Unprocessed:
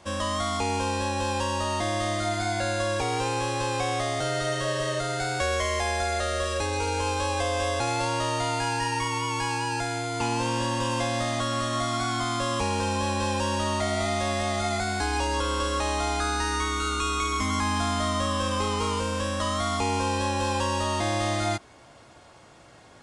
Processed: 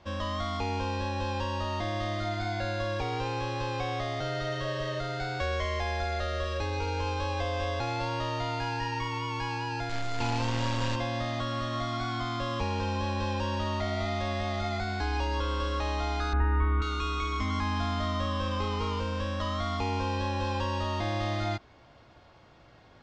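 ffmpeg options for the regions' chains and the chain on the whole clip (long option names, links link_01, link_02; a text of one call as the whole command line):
ffmpeg -i in.wav -filter_complex "[0:a]asettb=1/sr,asplit=3[link_01][link_02][link_03];[link_01]atrim=end=9.894[link_04];[link_02]atrim=start=9.89:end=10.96,asetpts=PTS-STARTPTS,afade=type=in:duration=0.004:curve=qsin,afade=type=out:start_time=1.066:duration=0.004:curve=qsin,equalizer=frequency=7200:width=6:gain=13,acrusher=bits=5:dc=4:mix=0:aa=0.000001,asplit=2[link_05][link_06];[link_06]adelay=33,volume=-6dB[link_07];[link_05][link_07]amix=inputs=2:normalize=0,atrim=end_sample=47187[link_08];[link_03]atrim=start=10.956[link_09];[link_04][link_08]acrossfade=duration=0.004:curve1=hsin:curve2=qsin[link_10];[link_10][link_09]acrossfade=duration=0.004:curve1=qsin:curve2=hsin,asettb=1/sr,asplit=3[link_11][link_12][link_13];[link_11]atrim=end=16.334[link_14];[link_12]atrim=start=16.33:end=16.82,asetpts=PTS-STARTPTS,afade=type=in:duration=0.004:curve=qsin,afade=type=out:start_time=0.486:duration=0.004:curve=qsin,lowpass=frequency=2000:width=0.5412,lowpass=frequency=2000:width=1.3066,lowshelf=frequency=180:gain=9[link_15];[link_13]atrim=start=16.816[link_16];[link_14][link_15]acrossfade=duration=0.004:curve1=hsin:curve2=qsin[link_17];[link_17][link_16]acrossfade=duration=0.004:curve1=qsin:curve2=hsin,lowpass=frequency=5000:width=0.5412,lowpass=frequency=5000:width=1.3066,lowshelf=frequency=89:gain=10,volume=-5.5dB" out.wav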